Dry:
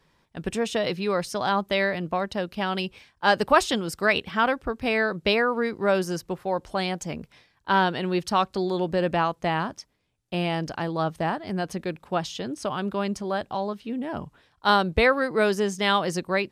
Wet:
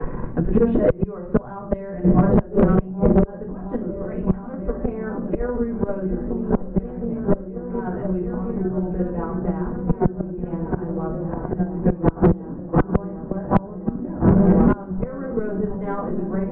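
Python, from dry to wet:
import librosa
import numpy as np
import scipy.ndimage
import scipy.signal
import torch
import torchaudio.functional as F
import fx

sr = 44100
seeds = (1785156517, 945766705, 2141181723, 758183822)

p1 = np.clip(x, -10.0 ** (-17.0 / 20.0), 10.0 ** (-17.0 / 20.0))
p2 = x + (p1 * 10.0 ** (-10.0 / 20.0))
p3 = fx.auto_swell(p2, sr, attack_ms=220.0)
p4 = p3 + fx.echo_opening(p3, sr, ms=717, hz=200, octaves=1, feedback_pct=70, wet_db=0, dry=0)
p5 = fx.room_shoebox(p4, sr, seeds[0], volume_m3=39.0, walls='mixed', distance_m=2.0)
p6 = fx.gate_flip(p5, sr, shuts_db=-6.0, range_db=-30)
p7 = scipy.signal.sosfilt(scipy.signal.butter(4, 1600.0, 'lowpass', fs=sr, output='sos'), p6)
p8 = fx.transient(p7, sr, attack_db=10, sustain_db=6)
p9 = fx.tilt_eq(p8, sr, slope=-4.0)
p10 = 10.0 ** (-2.5 / 20.0) * np.tanh(p9 / 10.0 ** (-2.5 / 20.0))
p11 = fx.band_squash(p10, sr, depth_pct=70)
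y = p11 * 10.0 ** (-2.0 / 20.0)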